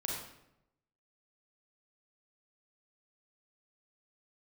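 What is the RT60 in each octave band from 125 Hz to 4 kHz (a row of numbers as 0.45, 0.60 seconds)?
1.1, 0.95, 0.90, 0.80, 0.70, 0.60 seconds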